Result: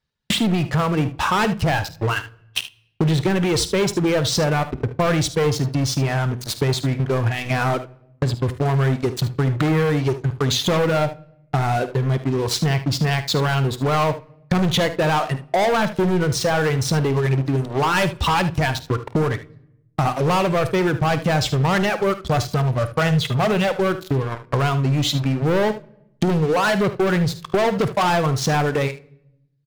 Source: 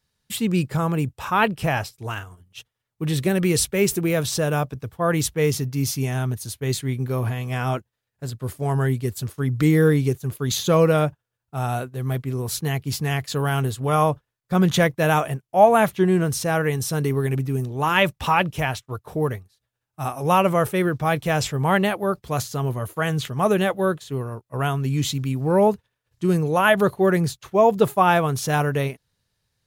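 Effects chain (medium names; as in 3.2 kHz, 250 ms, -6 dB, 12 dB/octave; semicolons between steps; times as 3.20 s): low-pass 4.5 kHz 12 dB/octave; reverb removal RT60 1.6 s; 15.19–15.90 s: high-pass 180 Hz 12 dB/octave; 22.21–23.68 s: comb 1.5 ms, depth 58%; waveshaping leveller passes 5; compression 8:1, threshold -25 dBFS, peak gain reduction 18.5 dB; early reflections 51 ms -16 dB, 75 ms -14 dB; on a send at -20 dB: reverberation RT60 0.85 s, pre-delay 6 ms; on the sum: trim +6 dB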